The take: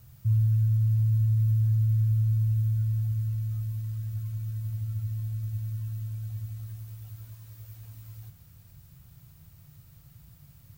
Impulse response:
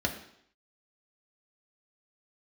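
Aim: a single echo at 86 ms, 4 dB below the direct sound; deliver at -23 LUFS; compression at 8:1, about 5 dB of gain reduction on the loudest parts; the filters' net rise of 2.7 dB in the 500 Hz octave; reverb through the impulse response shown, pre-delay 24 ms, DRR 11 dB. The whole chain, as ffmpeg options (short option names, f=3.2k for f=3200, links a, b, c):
-filter_complex "[0:a]equalizer=f=500:t=o:g=3.5,acompressor=threshold=-26dB:ratio=8,aecho=1:1:86:0.631,asplit=2[a][b];[1:a]atrim=start_sample=2205,adelay=24[c];[b][c]afir=irnorm=-1:irlink=0,volume=-18.5dB[d];[a][d]amix=inputs=2:normalize=0,volume=13dB"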